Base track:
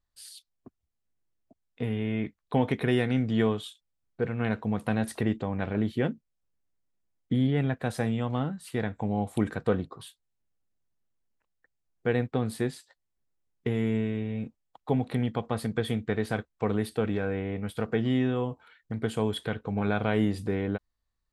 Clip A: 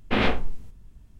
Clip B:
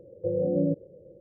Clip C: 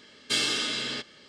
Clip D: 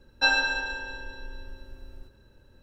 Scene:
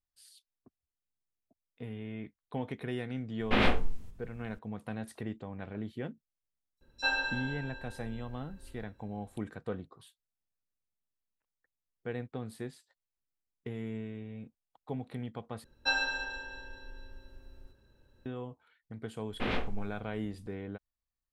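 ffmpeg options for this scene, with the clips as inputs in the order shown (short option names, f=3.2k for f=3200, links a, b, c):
-filter_complex "[1:a]asplit=2[a][b];[4:a]asplit=2[c][d];[0:a]volume=-11.5dB[e];[a]bandreject=f=50:t=h:w=6,bandreject=f=100:t=h:w=6,bandreject=f=150:t=h:w=6,bandreject=f=200:t=h:w=6,bandreject=f=250:t=h:w=6,bandreject=f=300:t=h:w=6,bandreject=f=350:t=h:w=6,bandreject=f=400:t=h:w=6,bandreject=f=450:t=h:w=6[f];[c]acrossover=split=5800[g][h];[g]adelay=40[i];[i][h]amix=inputs=2:normalize=0[j];[e]asplit=2[k][l];[k]atrim=end=15.644[m];[d]atrim=end=2.62,asetpts=PTS-STARTPTS,volume=-7.5dB[n];[l]atrim=start=18.256[o];[f]atrim=end=1.19,asetpts=PTS-STARTPTS,volume=-3dB,afade=t=in:d=0.004:c=hsin,afade=t=out:st=1.186:d=0.004:c=hsin,adelay=3400[p];[j]atrim=end=2.62,asetpts=PTS-STARTPTS,volume=-7.5dB,afade=t=in:d=0.004:c=hsin,afade=t=out:st=2.616:d=0.004:c=hsin,adelay=6770[q];[b]atrim=end=1.19,asetpts=PTS-STARTPTS,volume=-10.5dB,afade=t=in:d=0.004:c=hsin,afade=t=out:st=1.186:d=0.004:c=hsin,adelay=19290[r];[m][n]acrossfade=d=0.004:c1=hsin:c2=hsin[s];[s][o]acrossfade=d=0.004:c1=hsin:c2=hsin[t];[t][p][q][r]amix=inputs=4:normalize=0"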